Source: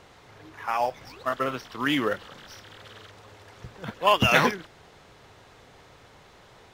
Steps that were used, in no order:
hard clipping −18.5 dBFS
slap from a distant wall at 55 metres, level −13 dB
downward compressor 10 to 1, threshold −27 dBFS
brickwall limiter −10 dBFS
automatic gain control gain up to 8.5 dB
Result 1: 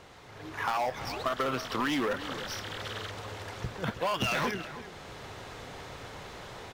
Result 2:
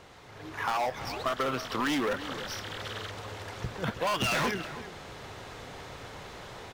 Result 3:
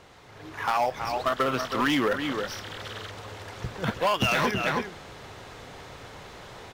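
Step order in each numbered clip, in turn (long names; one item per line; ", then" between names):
automatic gain control, then brickwall limiter, then hard clipping, then downward compressor, then slap from a distant wall
brickwall limiter, then automatic gain control, then hard clipping, then downward compressor, then slap from a distant wall
slap from a distant wall, then brickwall limiter, then downward compressor, then automatic gain control, then hard clipping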